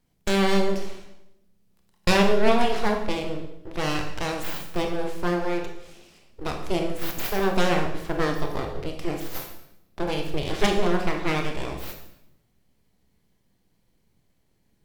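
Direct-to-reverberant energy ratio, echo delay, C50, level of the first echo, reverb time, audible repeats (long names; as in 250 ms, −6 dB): 3.0 dB, no echo audible, 6.0 dB, no echo audible, 0.80 s, no echo audible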